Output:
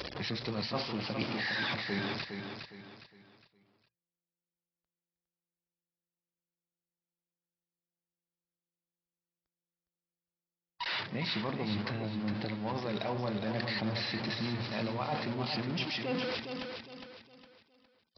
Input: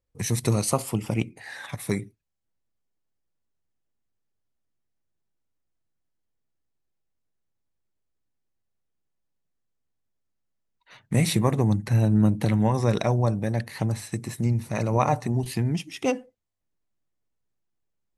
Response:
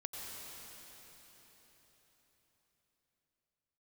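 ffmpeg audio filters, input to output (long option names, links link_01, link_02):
-af "aeval=exprs='val(0)+0.5*0.0501*sgn(val(0))':channel_layout=same,aemphasis=mode=production:type=bsi,bandreject=frequency=117.2:width_type=h:width=4,bandreject=frequency=234.4:width_type=h:width=4,bandreject=frequency=351.6:width_type=h:width=4,bandreject=frequency=468.8:width_type=h:width=4,bandreject=frequency=586:width_type=h:width=4,bandreject=frequency=703.2:width_type=h:width=4,bandreject=frequency=820.4:width_type=h:width=4,bandreject=frequency=937.6:width_type=h:width=4,bandreject=frequency=1054.8:width_type=h:width=4,bandreject=frequency=1172:width_type=h:width=4,bandreject=frequency=1289.2:width_type=h:width=4,bandreject=frequency=1406.4:width_type=h:width=4,bandreject=frequency=1523.6:width_type=h:width=4,bandreject=frequency=1640.8:width_type=h:width=4,bandreject=frequency=1758:width_type=h:width=4,bandreject=frequency=1875.2:width_type=h:width=4,bandreject=frequency=1992.4:width_type=h:width=4,bandreject=frequency=2109.6:width_type=h:width=4,bandreject=frequency=2226.8:width_type=h:width=4,bandreject=frequency=2344:width_type=h:width=4,bandreject=frequency=2461.2:width_type=h:width=4,bandreject=frequency=2578.4:width_type=h:width=4,bandreject=frequency=2695.6:width_type=h:width=4,afftfilt=real='re*gte(hypot(re,im),0.00891)':imag='im*gte(hypot(re,im),0.00891)':win_size=1024:overlap=0.75,acontrast=29,aresample=11025,aresample=44100,highpass=61,adynamicequalizer=threshold=0.0126:dfrequency=220:dqfactor=4.5:tfrequency=220:tqfactor=4.5:attack=5:release=100:ratio=0.375:range=2.5:mode=boostabove:tftype=bell,areverse,acompressor=threshold=-26dB:ratio=10,areverse,aecho=1:1:410|820|1230|1640:0.473|0.166|0.058|0.0203,volume=-5.5dB"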